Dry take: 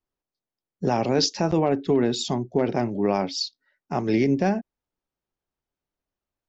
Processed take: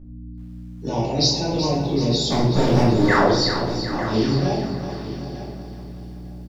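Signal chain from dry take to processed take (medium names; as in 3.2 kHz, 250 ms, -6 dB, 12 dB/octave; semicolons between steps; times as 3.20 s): coarse spectral quantiser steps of 30 dB; fifteen-band graphic EQ 250 Hz -4 dB, 630 Hz -5 dB, 1.6 kHz -9 dB, 4 kHz +8 dB; 2.30–3.14 s: waveshaping leveller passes 3; hum 60 Hz, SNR 14 dB; 3.08–3.30 s: painted sound fall 300–2200 Hz -19 dBFS; feedback delay 902 ms, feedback 16%, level -13 dB; simulated room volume 330 m³, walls mixed, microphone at 2.5 m; bit-crushed delay 378 ms, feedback 55%, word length 8-bit, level -10 dB; trim -5.5 dB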